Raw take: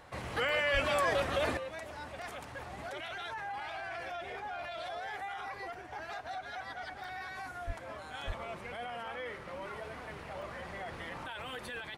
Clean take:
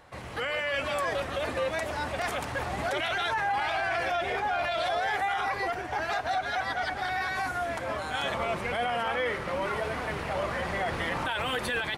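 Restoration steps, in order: 0.73–0.85 HPF 140 Hz 24 dB/oct; 7.66–7.78 HPF 140 Hz 24 dB/oct; 8.26–8.38 HPF 140 Hz 24 dB/oct; interpolate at 0.49/0.86/7.04/10.42, 1.4 ms; 1.57 gain correction +12 dB

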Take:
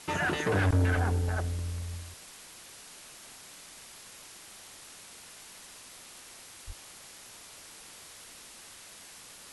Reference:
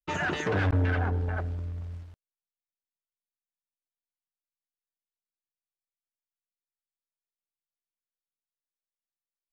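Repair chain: 0.92–1.04 HPF 140 Hz 24 dB/oct; 6.66–6.78 HPF 140 Hz 24 dB/oct; noise print and reduce 30 dB

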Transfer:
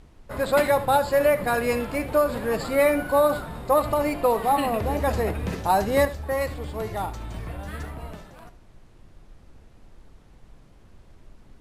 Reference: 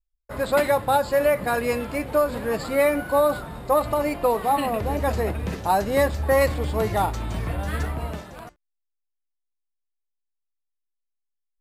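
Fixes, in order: noise print and reduce 28 dB; inverse comb 75 ms -15.5 dB; gain 0 dB, from 6.05 s +7 dB

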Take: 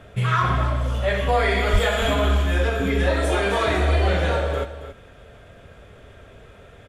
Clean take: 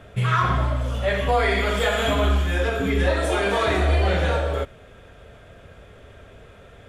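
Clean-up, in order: 1.72–1.84 HPF 140 Hz 24 dB/oct; inverse comb 0.275 s -12 dB

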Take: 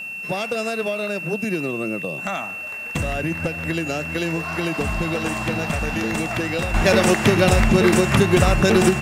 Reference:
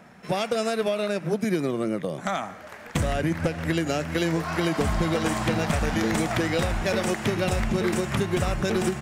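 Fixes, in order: notch 2700 Hz, Q 30; expander -23 dBFS, range -21 dB; gain 0 dB, from 6.74 s -9 dB

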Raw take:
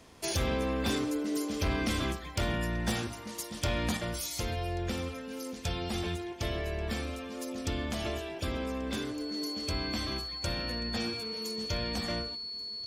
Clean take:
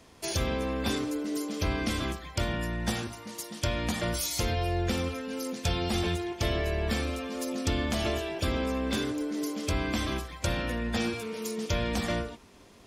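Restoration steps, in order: clip repair -24 dBFS; notch 4400 Hz, Q 30; inverse comb 1.135 s -22.5 dB; gain correction +5 dB, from 3.97

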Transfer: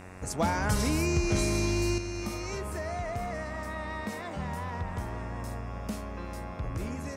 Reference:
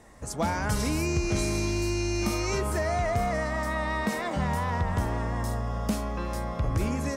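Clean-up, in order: de-hum 92.4 Hz, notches 30; gain 0 dB, from 1.98 s +7.5 dB

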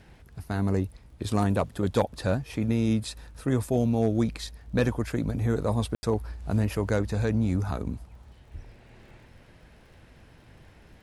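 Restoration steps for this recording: clip repair -13.5 dBFS; de-click; room tone fill 5.95–6.03

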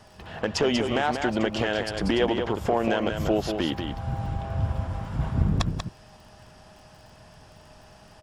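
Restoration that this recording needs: de-click; notch 620 Hz, Q 30; inverse comb 0.189 s -6.5 dB

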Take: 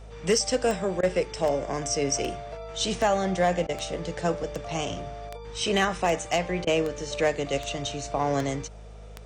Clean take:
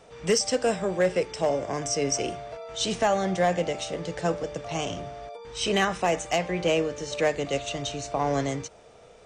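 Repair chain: de-click; de-hum 52.2 Hz, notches 4; interpolate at 1.01/3.67/6.65, 19 ms

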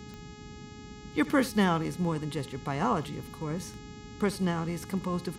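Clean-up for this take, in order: de-click; de-hum 419.3 Hz, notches 18; noise print and reduce 29 dB; inverse comb 73 ms -19 dB

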